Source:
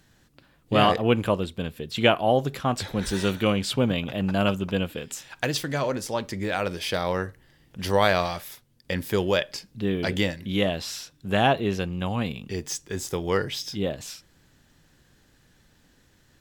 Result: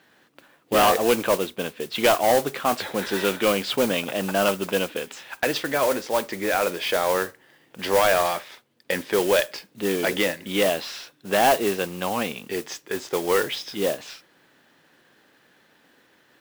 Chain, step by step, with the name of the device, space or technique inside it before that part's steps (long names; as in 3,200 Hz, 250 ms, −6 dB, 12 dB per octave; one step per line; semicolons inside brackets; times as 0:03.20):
carbon microphone (band-pass filter 350–3,200 Hz; soft clipping −19 dBFS, distortion −11 dB; noise that follows the level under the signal 12 dB)
level +7 dB